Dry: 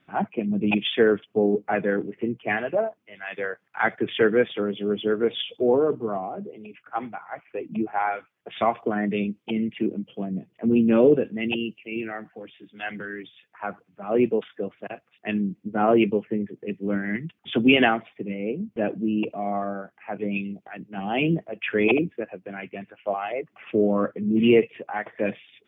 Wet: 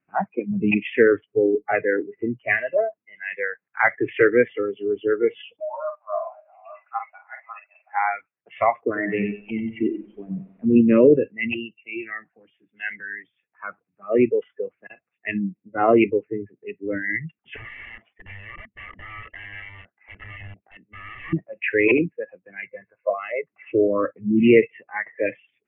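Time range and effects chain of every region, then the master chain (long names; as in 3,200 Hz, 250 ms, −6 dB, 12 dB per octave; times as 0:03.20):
0:05.60–0:08.00: delay that plays each chunk backwards 410 ms, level −5 dB + linear-phase brick-wall band-pass 560–2,900 Hz + double-tracking delay 47 ms −7 dB
0:08.81–0:10.81: running median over 9 samples + feedback echo at a low word length 93 ms, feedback 55%, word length 8 bits, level −6 dB
0:17.56–0:21.33: parametric band 150 Hz −13 dB 0.26 octaves + downward compressor 4 to 1, threshold −29 dBFS + wrap-around overflow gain 30.5 dB
0:22.65–0:23.10: Butterworth low-pass 2,200 Hz + comb filter 1.9 ms, depth 62%
whole clip: Butterworth low-pass 2,700 Hz 72 dB per octave; noise reduction from a noise print of the clip's start 18 dB; dynamic equaliser 2,000 Hz, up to +7 dB, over −48 dBFS, Q 5.2; level +3 dB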